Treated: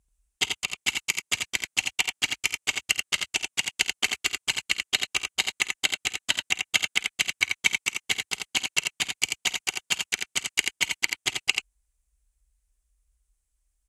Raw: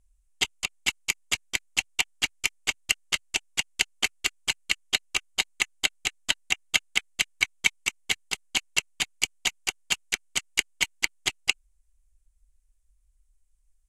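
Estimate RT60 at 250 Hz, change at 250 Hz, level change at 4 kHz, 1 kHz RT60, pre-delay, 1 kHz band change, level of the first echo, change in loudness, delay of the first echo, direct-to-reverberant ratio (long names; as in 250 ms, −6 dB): no reverb audible, +1.0 dB, +1.0 dB, no reverb audible, no reverb audible, +1.0 dB, −19.0 dB, +1.0 dB, 51 ms, no reverb audible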